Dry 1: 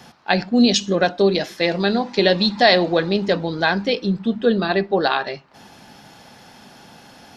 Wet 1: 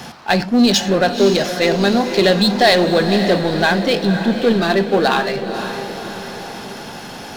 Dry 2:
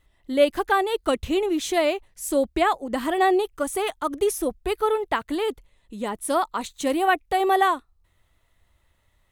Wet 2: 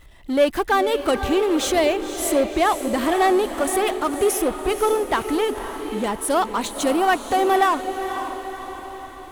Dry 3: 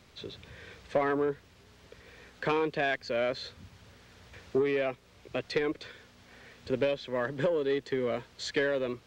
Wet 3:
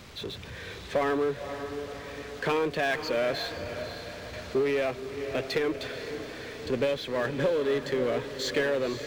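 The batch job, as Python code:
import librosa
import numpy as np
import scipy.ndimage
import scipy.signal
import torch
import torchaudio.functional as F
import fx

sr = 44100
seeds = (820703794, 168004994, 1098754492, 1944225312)

y = fx.power_curve(x, sr, exponent=0.7)
y = fx.echo_diffused(y, sr, ms=526, feedback_pct=54, wet_db=-9.0)
y = F.gain(torch.from_numpy(y), -1.0).numpy()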